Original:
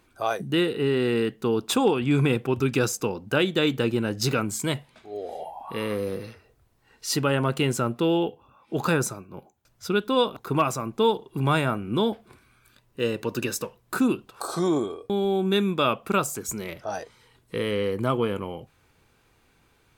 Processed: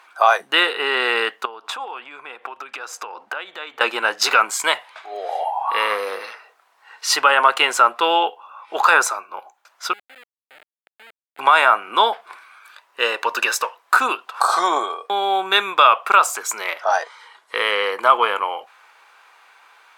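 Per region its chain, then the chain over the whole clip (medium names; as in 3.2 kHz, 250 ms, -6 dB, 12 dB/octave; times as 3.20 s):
1.45–3.81 s: treble shelf 3.7 kHz -8 dB + compression 20:1, threshold -35 dBFS
9.93–11.39 s: amplifier tone stack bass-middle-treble 10-0-1 + Schmitt trigger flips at -40 dBFS + static phaser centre 2.5 kHz, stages 4
16.83–17.56 s: low-pass 11 kHz + band-stop 2.6 kHz
whole clip: high-pass 920 Hz 24 dB/octave; tilt EQ -4.5 dB/octave; loudness maximiser +21 dB; trim -1 dB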